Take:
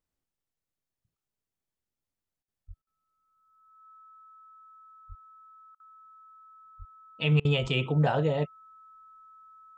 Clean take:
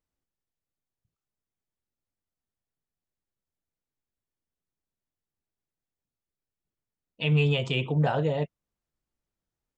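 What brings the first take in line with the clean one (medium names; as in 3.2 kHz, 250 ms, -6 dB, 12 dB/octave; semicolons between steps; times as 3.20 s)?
band-stop 1.3 kHz, Q 30; de-plosive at 2.67/5.08/6.78/7.61 s; interpolate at 2.43/2.82/5.75/7.40 s, 48 ms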